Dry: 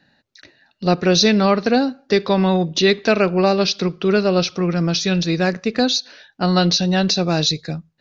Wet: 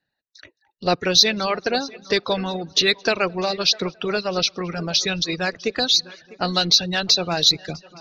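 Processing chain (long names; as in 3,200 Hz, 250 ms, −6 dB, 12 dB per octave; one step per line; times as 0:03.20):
noise reduction from a noise print of the clip's start 17 dB
echo machine with several playback heads 217 ms, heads first and third, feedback 42%, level −19 dB
dynamic equaliser 3,900 Hz, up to +4 dB, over −32 dBFS, Q 2.5
harmonic and percussive parts rebalanced percussive +8 dB
parametric band 240 Hz −5.5 dB 0.79 octaves
in parallel at −11 dB: soft clipping −4 dBFS, distortion −15 dB
on the sum: reverb reduction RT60 0.76 s
level −8.5 dB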